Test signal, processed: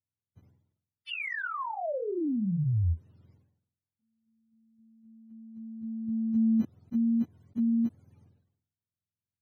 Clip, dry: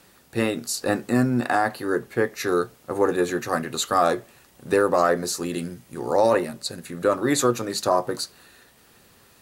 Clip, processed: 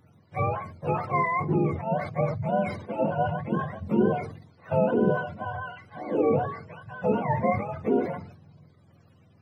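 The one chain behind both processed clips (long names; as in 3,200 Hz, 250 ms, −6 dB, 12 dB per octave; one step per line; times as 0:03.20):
frequency axis turned over on the octave scale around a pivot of 510 Hz
level that may fall only so fast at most 80 dB per second
level −3 dB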